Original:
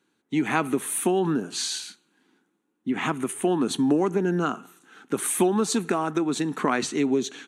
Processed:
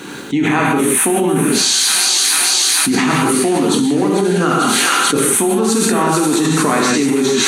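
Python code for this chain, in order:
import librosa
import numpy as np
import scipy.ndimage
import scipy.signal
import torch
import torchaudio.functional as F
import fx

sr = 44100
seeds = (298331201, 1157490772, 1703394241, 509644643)

y = fx.echo_wet_highpass(x, sr, ms=444, feedback_pct=76, hz=2000.0, wet_db=-7)
y = fx.rev_gated(y, sr, seeds[0], gate_ms=210, shape='flat', drr_db=-2.5)
y = fx.env_flatten(y, sr, amount_pct=100)
y = F.gain(torch.from_numpy(y), -1.0).numpy()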